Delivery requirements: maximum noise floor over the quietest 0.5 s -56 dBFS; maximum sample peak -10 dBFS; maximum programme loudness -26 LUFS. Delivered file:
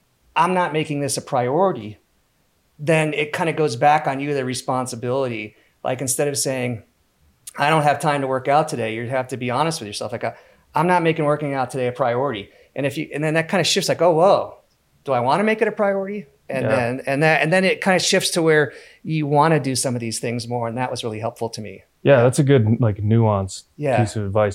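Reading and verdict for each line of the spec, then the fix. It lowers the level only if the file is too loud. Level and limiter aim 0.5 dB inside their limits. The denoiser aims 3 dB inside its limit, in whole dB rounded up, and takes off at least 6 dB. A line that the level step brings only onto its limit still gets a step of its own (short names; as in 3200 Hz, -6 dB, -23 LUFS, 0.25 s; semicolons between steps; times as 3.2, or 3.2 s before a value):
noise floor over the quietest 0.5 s -63 dBFS: OK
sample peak -4.0 dBFS: fail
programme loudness -20.0 LUFS: fail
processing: gain -6.5 dB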